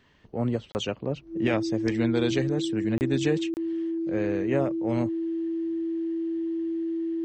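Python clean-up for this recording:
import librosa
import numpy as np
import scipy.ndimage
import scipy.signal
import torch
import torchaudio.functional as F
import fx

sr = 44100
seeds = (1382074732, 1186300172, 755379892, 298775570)

y = fx.notch(x, sr, hz=330.0, q=30.0)
y = fx.fix_interpolate(y, sr, at_s=(0.72, 2.98, 3.54), length_ms=29.0)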